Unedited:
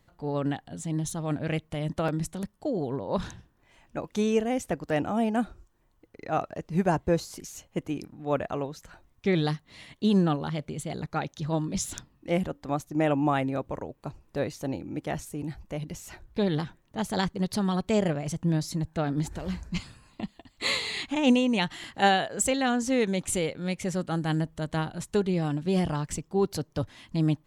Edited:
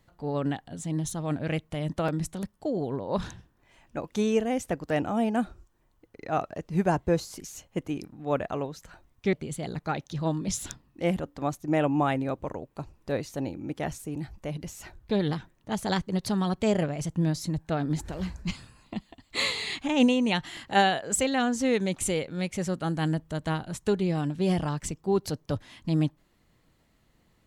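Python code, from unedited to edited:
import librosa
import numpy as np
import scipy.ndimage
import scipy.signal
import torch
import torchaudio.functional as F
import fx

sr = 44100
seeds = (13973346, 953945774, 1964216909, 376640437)

y = fx.edit(x, sr, fx.cut(start_s=9.33, length_s=1.27), tone=tone)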